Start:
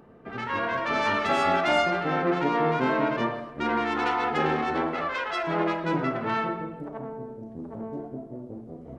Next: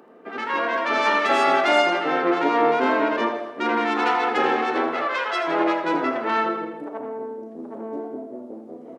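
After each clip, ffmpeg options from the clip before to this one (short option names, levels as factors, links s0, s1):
-filter_complex "[0:a]highpass=f=260:w=0.5412,highpass=f=260:w=1.3066,asplit=2[s0][s1];[s1]aecho=0:1:81|162|243|324|405:0.282|0.141|0.0705|0.0352|0.0176[s2];[s0][s2]amix=inputs=2:normalize=0,volume=1.68"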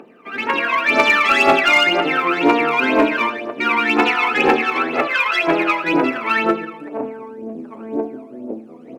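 -filter_complex "[0:a]equalizer=f=2500:t=o:w=0.34:g=13.5,aphaser=in_gain=1:out_gain=1:delay=1:decay=0.72:speed=2:type=triangular,asplit=2[s0][s1];[s1]aeval=exprs='0.355*(abs(mod(val(0)/0.355+3,4)-2)-1)':c=same,volume=0.398[s2];[s0][s2]amix=inputs=2:normalize=0,volume=0.794"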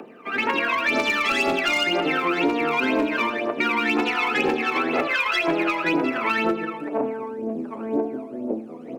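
-filter_complex "[0:a]acrossover=split=450|3000[s0][s1][s2];[s1]acompressor=threshold=0.0794:ratio=6[s3];[s0][s3][s2]amix=inputs=3:normalize=0,acrossover=split=320|880|2100[s4][s5][s6][s7];[s5]crystalizer=i=8:c=0[s8];[s4][s8][s6][s7]amix=inputs=4:normalize=0,acompressor=threshold=0.1:ratio=6,volume=1.19"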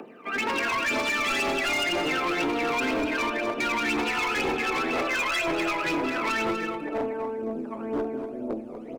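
-filter_complex "[0:a]asubboost=boost=5:cutoff=70,volume=11.9,asoftclip=hard,volume=0.0841,asplit=2[s0][s1];[s1]aecho=0:1:243:0.335[s2];[s0][s2]amix=inputs=2:normalize=0,volume=0.794"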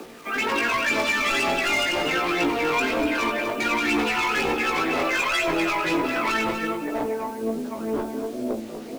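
-af "acrusher=bits=7:mix=0:aa=0.000001,flanger=delay=16.5:depth=2.7:speed=1.3,volume=2"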